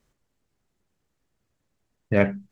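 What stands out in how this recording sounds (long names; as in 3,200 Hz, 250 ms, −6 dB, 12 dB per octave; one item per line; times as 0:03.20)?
background noise floor −77 dBFS
spectral slope −5.0 dB per octave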